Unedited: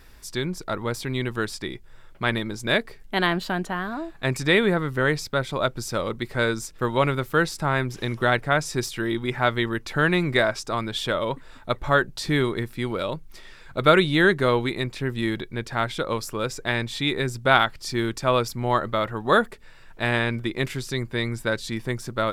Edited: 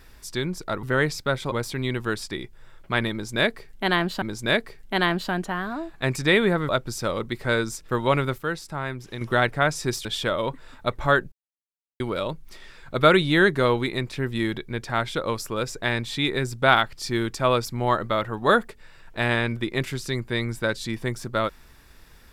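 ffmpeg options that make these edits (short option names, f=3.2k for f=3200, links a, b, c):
-filter_complex "[0:a]asplit=10[a][b][c][d][e][f][g][h][i][j];[a]atrim=end=0.832[k];[b]atrim=start=4.898:end=5.592[l];[c]atrim=start=0.828:end=3.532[m];[d]atrim=start=2.428:end=4.902[n];[e]atrim=start=5.588:end=7.282[o];[f]atrim=start=7.278:end=8.112,asetpts=PTS-STARTPTS,volume=-7dB[p];[g]atrim=start=8.108:end=8.952[q];[h]atrim=start=10.878:end=12.15,asetpts=PTS-STARTPTS,afade=t=out:st=1.268:d=0.004:c=hsin[r];[i]atrim=start=12.15:end=12.83,asetpts=PTS-STARTPTS,volume=0[s];[j]atrim=start=12.83,asetpts=PTS-STARTPTS,afade=t=in:d=0.004:c=hsin[t];[k][l]acrossfade=d=0.004:c1=hsin:c2=hsin[u];[u][m]acrossfade=d=0.004:c1=hsin:c2=hsin[v];[v][n]acrossfade=d=0.004:c1=hsin:c2=hsin[w];[w][o]acrossfade=d=0.004:c1=hsin:c2=hsin[x];[x][p]acrossfade=d=0.004:c1=hsin:c2=hsin[y];[y][q]acrossfade=d=0.004:c1=hsin:c2=hsin[z];[r][s][t]concat=n=3:v=0:a=1[aa];[z][aa]acrossfade=d=0.004:c1=hsin:c2=hsin"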